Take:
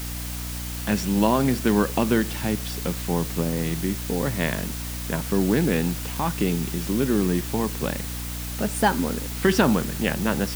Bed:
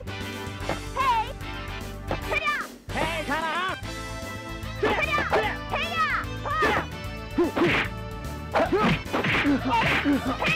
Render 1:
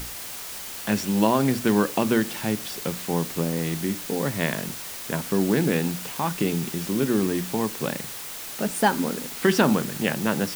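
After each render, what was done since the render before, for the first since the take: hum notches 60/120/180/240/300 Hz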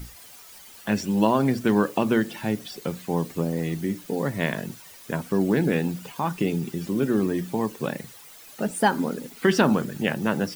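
noise reduction 13 dB, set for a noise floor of -36 dBFS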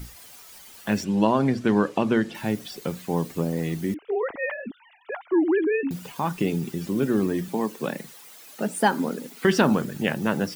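1.04–2.35 s: distance through air 63 m; 3.94–5.91 s: formants replaced by sine waves; 7.48–9.45 s: high-pass 160 Hz 24 dB/octave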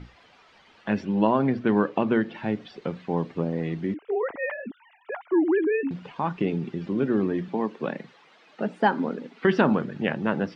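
Bessel low-pass 2.5 kHz, order 4; bass shelf 91 Hz -8.5 dB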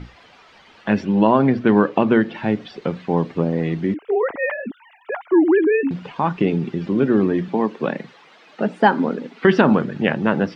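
trim +7 dB; peak limiter -2 dBFS, peak gain reduction 3 dB

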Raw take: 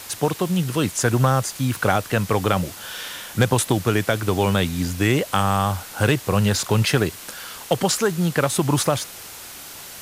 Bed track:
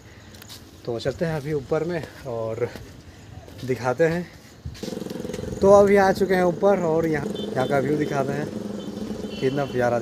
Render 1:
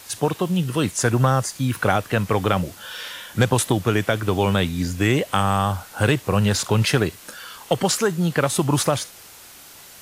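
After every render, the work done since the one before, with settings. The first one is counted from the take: noise print and reduce 6 dB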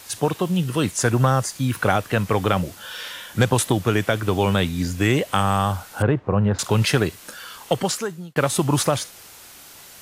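6.02–6.59 s: low-pass 1.2 kHz; 7.69–8.36 s: fade out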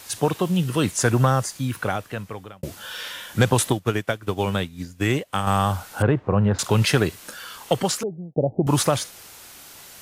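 1.18–2.63 s: fade out; 3.70–5.47 s: upward expansion 2.5:1, over -29 dBFS; 8.03–8.67 s: steep low-pass 770 Hz 72 dB/octave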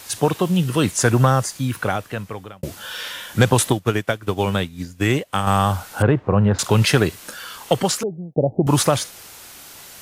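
trim +3 dB

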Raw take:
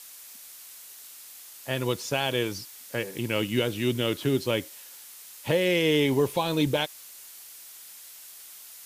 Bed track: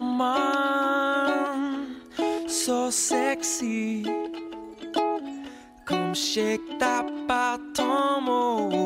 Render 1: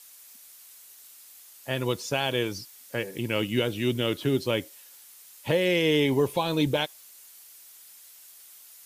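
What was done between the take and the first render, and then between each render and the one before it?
noise reduction 6 dB, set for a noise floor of -47 dBFS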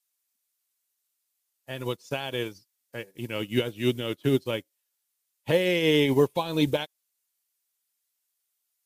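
in parallel at +1 dB: peak limiter -20 dBFS, peak gain reduction 7 dB; on the sum: upward expansion 2.5:1, over -40 dBFS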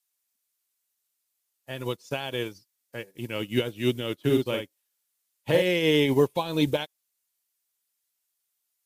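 4.21–5.62 s: doubling 48 ms -4.5 dB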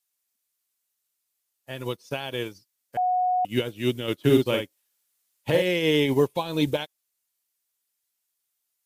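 1.89–2.34 s: band-stop 7.3 kHz, Q 6.5; 2.97–3.45 s: bleep 731 Hz -20 dBFS; 4.08–5.50 s: gain +4 dB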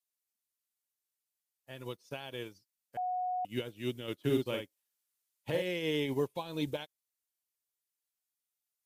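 trim -11 dB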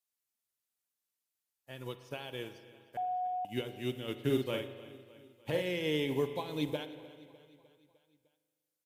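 feedback delay 303 ms, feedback 58%, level -19.5 dB; spring tank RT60 1.8 s, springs 39 ms, chirp 25 ms, DRR 10.5 dB

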